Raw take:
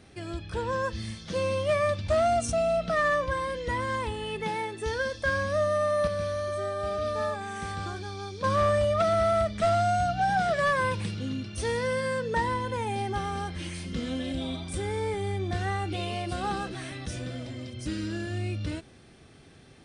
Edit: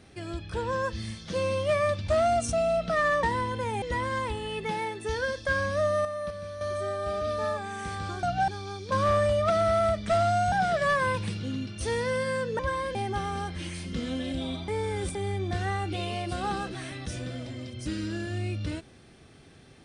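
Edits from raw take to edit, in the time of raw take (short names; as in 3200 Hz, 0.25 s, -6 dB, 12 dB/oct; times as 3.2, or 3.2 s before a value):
3.23–3.59 swap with 12.36–12.95
5.82–6.38 gain -8 dB
10.04–10.29 move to 8
14.68–15.15 reverse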